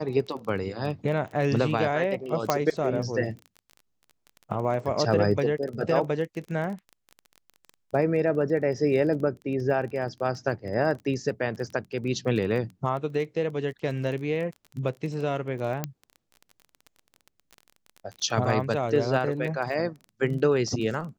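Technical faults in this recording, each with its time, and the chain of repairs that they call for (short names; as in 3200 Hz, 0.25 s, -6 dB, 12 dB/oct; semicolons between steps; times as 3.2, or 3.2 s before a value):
crackle 21/s -34 dBFS
2.5 pop -8 dBFS
15.84 pop -13 dBFS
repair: de-click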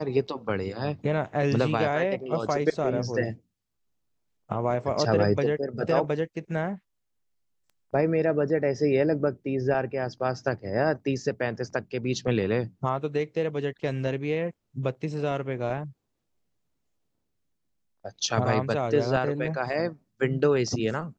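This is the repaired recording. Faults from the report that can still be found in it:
none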